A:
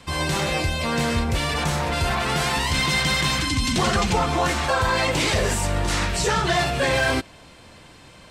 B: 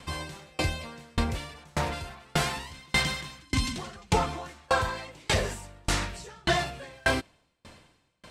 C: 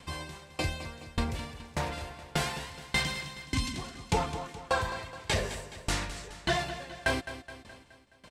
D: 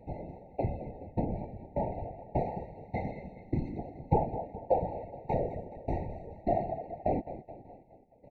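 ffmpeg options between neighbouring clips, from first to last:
-af "aeval=exprs='val(0)*pow(10,-35*if(lt(mod(1.7*n/s,1),2*abs(1.7)/1000),1-mod(1.7*n/s,1)/(2*abs(1.7)/1000),(mod(1.7*n/s,1)-2*abs(1.7)/1000)/(1-2*abs(1.7)/1000))/20)':c=same"
-filter_complex "[0:a]bandreject=f=1.3k:w=17,asplit=2[a][b];[b]aecho=0:1:211|422|633|844|1055:0.237|0.126|0.0666|0.0353|0.0187[c];[a][c]amix=inputs=2:normalize=0,volume=-3.5dB"
-af "afftfilt=real='hypot(re,im)*cos(2*PI*random(0))':imag='hypot(re,im)*sin(2*PI*random(1))':win_size=512:overlap=0.75,lowpass=f=730:t=q:w=1.6,afftfilt=real='re*eq(mod(floor(b*sr/1024/920),2),0)':imag='im*eq(mod(floor(b*sr/1024/920),2),0)':win_size=1024:overlap=0.75,volume=6dB"

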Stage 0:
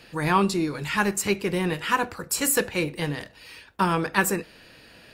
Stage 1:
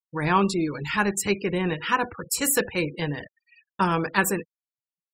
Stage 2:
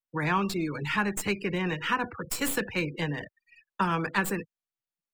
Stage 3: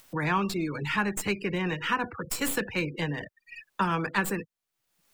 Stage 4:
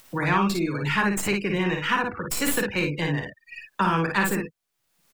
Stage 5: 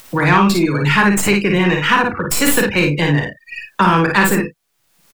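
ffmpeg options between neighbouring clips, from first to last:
-af "afftfilt=real='re*gte(hypot(re,im),0.02)':imag='im*gte(hypot(re,im),0.02)':win_size=1024:overlap=0.75,agate=range=-33dB:threshold=-45dB:ratio=3:detection=peak"
-filter_complex "[0:a]acrossover=split=87|300|940[a][b][c][d];[a]acompressor=threshold=-55dB:ratio=4[e];[b]acompressor=threshold=-30dB:ratio=4[f];[c]acompressor=threshold=-36dB:ratio=4[g];[d]acompressor=threshold=-25dB:ratio=4[h];[e][f][g][h]amix=inputs=4:normalize=0,acrossover=split=140|680|3500[i][j][k][l];[l]aeval=exprs='max(val(0),0)':c=same[m];[i][j][k][m]amix=inputs=4:normalize=0"
-af "acompressor=mode=upward:threshold=-30dB:ratio=2.5"
-af "aecho=1:1:41|55:0.266|0.631,volume=3dB"
-filter_complex "[0:a]asplit=2[a][b];[b]adelay=34,volume=-13dB[c];[a][c]amix=inputs=2:normalize=0,asplit=2[d][e];[e]asoftclip=type=tanh:threshold=-19.5dB,volume=-4dB[f];[d][f]amix=inputs=2:normalize=0,volume=6.5dB"

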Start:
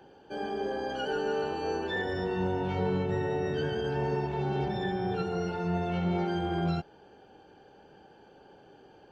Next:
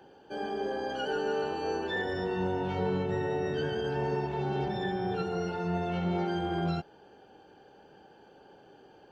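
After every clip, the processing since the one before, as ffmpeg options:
-af "lowshelf=f=120:g=-5,bandreject=f=2.3k:w=23"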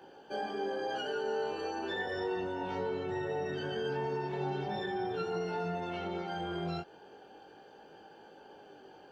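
-af "lowshelf=f=190:g=-9,acompressor=threshold=-35dB:ratio=6,flanger=delay=18:depth=4.4:speed=0.37,volume=5.5dB"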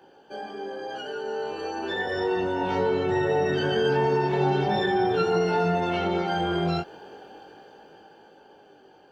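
-af "dynaudnorm=f=250:g=17:m=12dB"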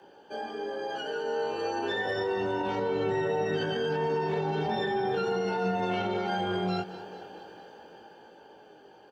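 -af "alimiter=limit=-21.5dB:level=0:latency=1:release=73,afreqshift=15,aecho=1:1:216|432|648|864:0.158|0.0792|0.0396|0.0198"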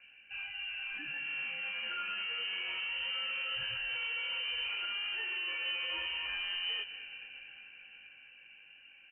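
-filter_complex "[0:a]acrossover=split=180|2400[a][b][c];[b]asoftclip=type=tanh:threshold=-31.5dB[d];[a][d][c]amix=inputs=3:normalize=0,lowpass=f=2.7k:t=q:w=0.5098,lowpass=f=2.7k:t=q:w=0.6013,lowpass=f=2.7k:t=q:w=0.9,lowpass=f=2.7k:t=q:w=2.563,afreqshift=-3200,volume=-4dB"

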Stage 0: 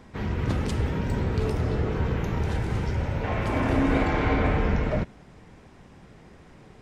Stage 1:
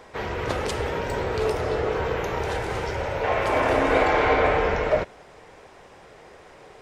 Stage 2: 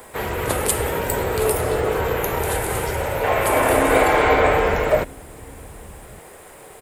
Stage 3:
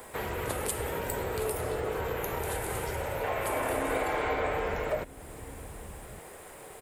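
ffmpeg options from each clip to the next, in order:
-af "lowshelf=f=330:t=q:w=1.5:g=-12,volume=6dB"
-filter_complex "[0:a]acrossover=split=290[a][b];[a]aecho=1:1:1156:0.211[c];[b]aexciter=amount=10.8:drive=6.9:freq=8.2k[d];[c][d]amix=inputs=2:normalize=0,volume=4dB"
-af "acompressor=threshold=-30dB:ratio=2,volume=-4.5dB"

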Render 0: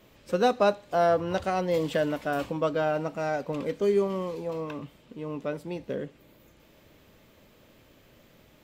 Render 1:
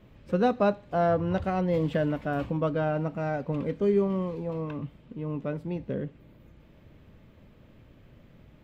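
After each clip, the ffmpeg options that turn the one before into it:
-af "bass=f=250:g=11,treble=f=4k:g=-13,volume=-2.5dB"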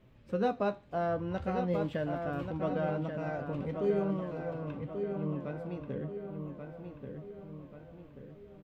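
-filter_complex "[0:a]flanger=delay=7.7:depth=7.4:regen=62:speed=0.44:shape=sinusoidal,asplit=2[a][b];[b]adelay=1135,lowpass=f=3.6k:p=1,volume=-6dB,asplit=2[c][d];[d]adelay=1135,lowpass=f=3.6k:p=1,volume=0.5,asplit=2[e][f];[f]adelay=1135,lowpass=f=3.6k:p=1,volume=0.5,asplit=2[g][h];[h]adelay=1135,lowpass=f=3.6k:p=1,volume=0.5,asplit=2[i][j];[j]adelay=1135,lowpass=f=3.6k:p=1,volume=0.5,asplit=2[k][l];[l]adelay=1135,lowpass=f=3.6k:p=1,volume=0.5[m];[c][e][g][i][k][m]amix=inputs=6:normalize=0[n];[a][n]amix=inputs=2:normalize=0,volume=-2.5dB"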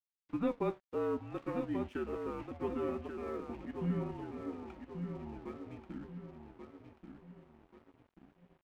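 -af "highpass=f=390:t=q:w=0.5412,highpass=f=390:t=q:w=1.307,lowpass=f=3.5k:t=q:w=0.5176,lowpass=f=3.5k:t=q:w=0.7071,lowpass=f=3.5k:t=q:w=1.932,afreqshift=-230,aeval=exprs='sgn(val(0))*max(abs(val(0))-0.00133,0)':c=same,volume=-1.5dB"

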